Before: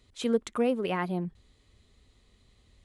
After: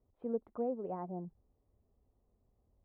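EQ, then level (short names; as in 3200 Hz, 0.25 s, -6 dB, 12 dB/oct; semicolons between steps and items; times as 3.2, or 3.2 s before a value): ladder low-pass 930 Hz, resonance 40%; -3.5 dB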